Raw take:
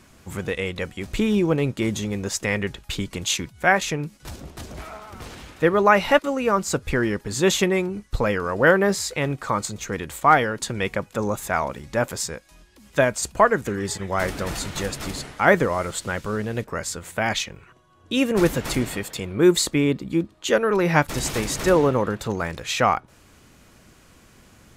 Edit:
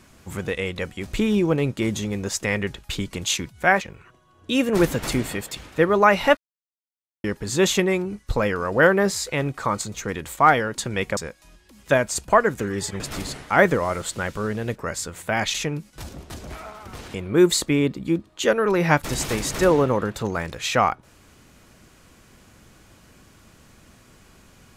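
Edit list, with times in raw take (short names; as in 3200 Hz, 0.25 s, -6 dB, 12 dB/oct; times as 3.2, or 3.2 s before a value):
3.81–5.41 swap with 17.43–19.19
6.21–7.08 mute
11.01–12.24 cut
14.07–14.89 cut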